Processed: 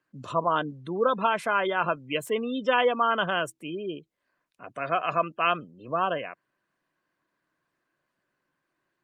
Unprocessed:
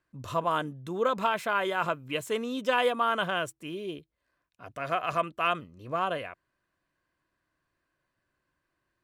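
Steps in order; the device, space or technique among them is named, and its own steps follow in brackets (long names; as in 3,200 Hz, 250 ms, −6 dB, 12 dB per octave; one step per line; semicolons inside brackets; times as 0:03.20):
0:02.76–0:03.88: dynamic equaliser 4,100 Hz, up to −6 dB, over −58 dBFS, Q 7.3
noise-suppressed video call (high-pass filter 140 Hz 24 dB per octave; gate on every frequency bin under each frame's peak −25 dB strong; level +3 dB; Opus 32 kbit/s 48,000 Hz)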